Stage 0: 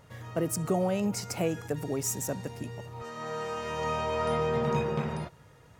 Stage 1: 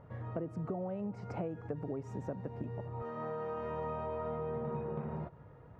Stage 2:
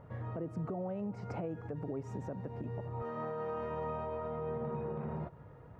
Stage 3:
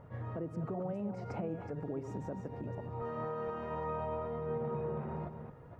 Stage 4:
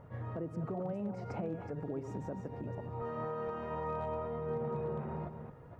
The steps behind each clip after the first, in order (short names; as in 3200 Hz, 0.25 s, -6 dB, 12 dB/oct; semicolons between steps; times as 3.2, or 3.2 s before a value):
LPF 1100 Hz 12 dB/oct; compressor 6:1, threshold -37 dBFS, peak gain reduction 13 dB; gain +1.5 dB
limiter -31.5 dBFS, peak gain reduction 8 dB; gain +1.5 dB
reverse delay 0.25 s, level -8 dB; attack slew limiter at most 270 dB/s
hard clip -29 dBFS, distortion -39 dB